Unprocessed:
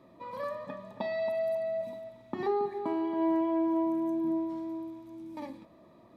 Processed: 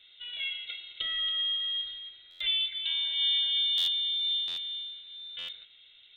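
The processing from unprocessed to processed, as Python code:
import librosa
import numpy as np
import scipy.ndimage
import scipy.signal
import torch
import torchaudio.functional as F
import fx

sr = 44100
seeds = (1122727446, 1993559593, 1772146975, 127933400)

y = fx.peak_eq(x, sr, hz=1600.0, db=14.0, octaves=0.3)
y = fx.freq_invert(y, sr, carrier_hz=3900)
y = fx.buffer_glitch(y, sr, at_s=(2.3, 3.77, 4.47, 5.38), block=512, repeats=8)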